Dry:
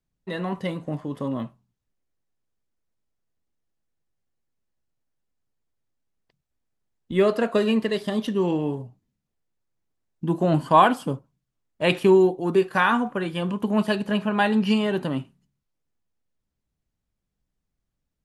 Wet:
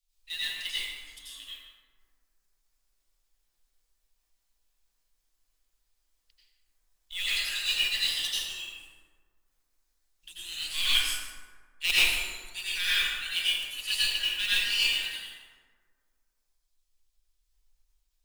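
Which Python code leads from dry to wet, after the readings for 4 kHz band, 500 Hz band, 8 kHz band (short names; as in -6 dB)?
+10.0 dB, -33.5 dB, n/a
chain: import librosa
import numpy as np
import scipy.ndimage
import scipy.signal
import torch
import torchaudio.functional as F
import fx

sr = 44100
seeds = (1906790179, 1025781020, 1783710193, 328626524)

p1 = fx.tracing_dist(x, sr, depth_ms=0.036)
p2 = scipy.signal.sosfilt(scipy.signal.cheby2(4, 60, [110.0, 940.0], 'bandstop', fs=sr, output='sos'), p1)
p3 = fx.dereverb_blind(p2, sr, rt60_s=1.4)
p4 = fx.rider(p3, sr, range_db=3, speed_s=0.5)
p5 = p3 + (p4 * 10.0 ** (-1.5 / 20.0))
p6 = np.clip(p5, -10.0 ** (-18.0 / 20.0), 10.0 ** (-18.0 / 20.0))
p7 = fx.mod_noise(p6, sr, seeds[0], snr_db=17)
p8 = p7 + 10.0 ** (-15.5 / 20.0) * np.pad(p7, (int(151 * sr / 1000.0), 0))[:len(p7)]
y = fx.rev_plate(p8, sr, seeds[1], rt60_s=1.6, hf_ratio=0.45, predelay_ms=75, drr_db=-10.0)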